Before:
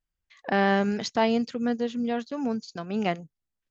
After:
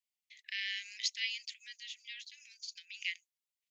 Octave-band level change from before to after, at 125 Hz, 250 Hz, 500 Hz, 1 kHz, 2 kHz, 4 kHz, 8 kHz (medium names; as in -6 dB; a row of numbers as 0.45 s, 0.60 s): under -40 dB, under -40 dB, under -40 dB, under -40 dB, -7.5 dB, 0.0 dB, no reading